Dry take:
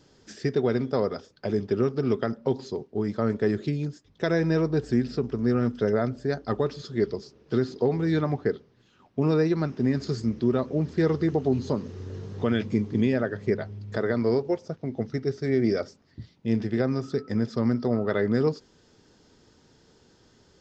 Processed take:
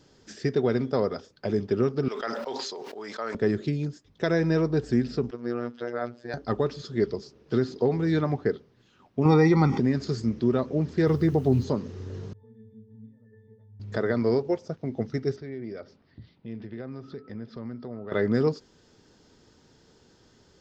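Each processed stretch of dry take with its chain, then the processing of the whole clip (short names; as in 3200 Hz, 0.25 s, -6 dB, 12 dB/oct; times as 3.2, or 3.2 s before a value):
2.08–3.35 HPF 770 Hz + sustainer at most 21 dB/s
5.31–6.34 HPF 86 Hz + three-band isolator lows -14 dB, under 360 Hz, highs -13 dB, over 5000 Hz + robotiser 120 Hz
9.25–9.8 comb 0.9 ms, depth 85% + small resonant body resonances 530/800/1900 Hz, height 17 dB, ringing for 60 ms + fast leveller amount 50%
11.07–11.64 bell 110 Hz +7.5 dB 1.1 oct + requantised 10-bit, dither none
12.33–13.8 air absorption 250 m + compressor 16:1, threshold -34 dBFS + octave resonator A, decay 0.54 s
15.36–18.12 LPF 4300 Hz 24 dB/oct + compressor 2:1, threshold -44 dBFS
whole clip: dry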